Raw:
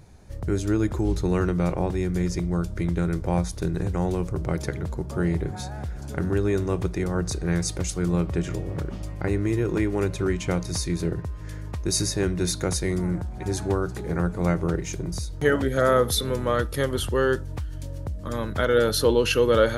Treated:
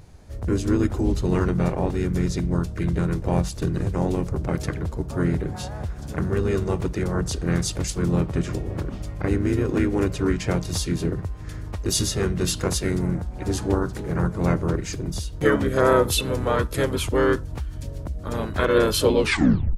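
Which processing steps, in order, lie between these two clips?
turntable brake at the end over 0.58 s
pitch-shifted copies added −5 semitones −4 dB, +3 semitones −11 dB

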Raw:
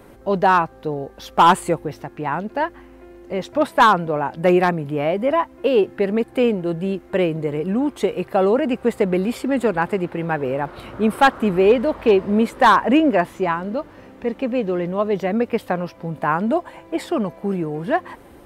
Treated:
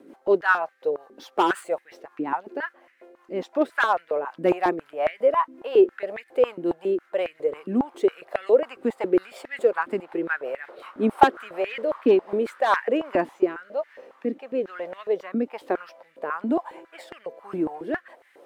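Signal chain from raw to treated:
running median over 3 samples
rotating-speaker cabinet horn 5.5 Hz, later 1.1 Hz, at 0:12.31
high-pass on a step sequencer 7.3 Hz 280–1,900 Hz
level −7 dB

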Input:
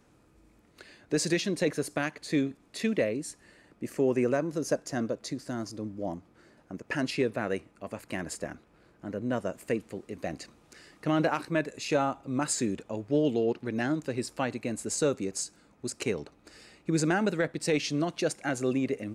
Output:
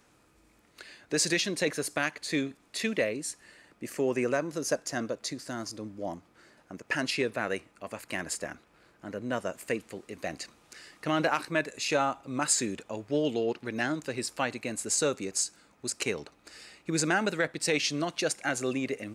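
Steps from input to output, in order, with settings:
tilt shelving filter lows −5 dB, about 670 Hz

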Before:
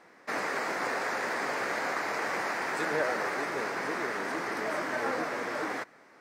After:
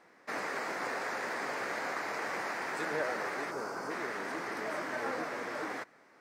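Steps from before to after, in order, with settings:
gain on a spectral selection 0:03.51–0:03.91, 1,600–4,300 Hz −10 dB
level −4.5 dB

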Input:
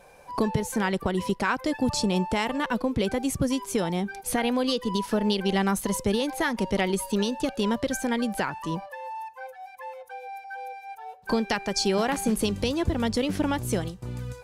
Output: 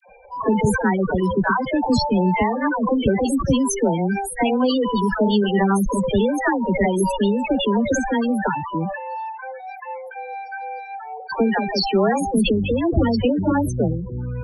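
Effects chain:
spectral peaks only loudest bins 16
all-pass dispersion lows, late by 95 ms, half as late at 690 Hz
level that may fall only so fast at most 56 dB per second
level +6.5 dB

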